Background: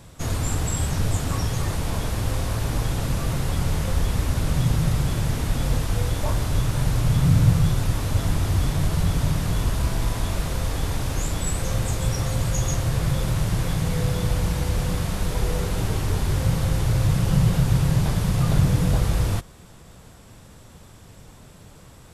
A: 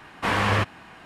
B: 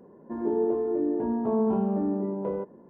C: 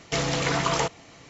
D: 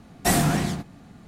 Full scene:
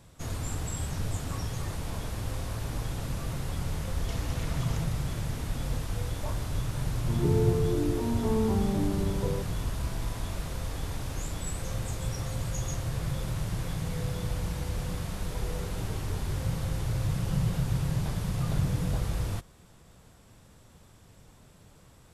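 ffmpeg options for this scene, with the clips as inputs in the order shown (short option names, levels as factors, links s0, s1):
-filter_complex "[0:a]volume=0.355[s0];[3:a]acompressor=threshold=0.0141:ratio=6:attack=3.2:release=140:knee=1:detection=peak[s1];[2:a]bandreject=f=640:w=6[s2];[s1]atrim=end=1.29,asetpts=PTS-STARTPTS,volume=0.668,afade=t=in:d=0.004:c=hsin,afade=t=out:st=1.286:d=0.004:c=hsin,adelay=175077S[s3];[s2]atrim=end=2.89,asetpts=PTS-STARTPTS,volume=0.708,afade=t=in:d=0.004:c=hsin,afade=t=out:st=2.886:d=0.004:c=hsin,adelay=6780[s4];[s0][s3][s4]amix=inputs=3:normalize=0"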